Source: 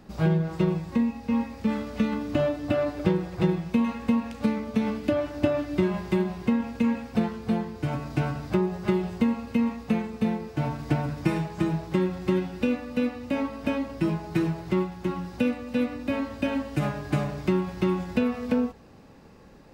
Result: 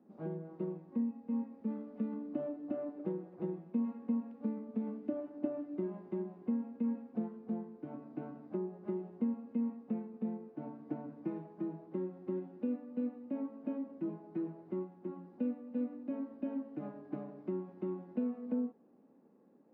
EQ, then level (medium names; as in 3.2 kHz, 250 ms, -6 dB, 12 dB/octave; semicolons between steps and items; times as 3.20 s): ladder band-pass 280 Hz, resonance 45%; tilt EQ +2 dB/octave; bass shelf 190 Hz -10 dB; +4.0 dB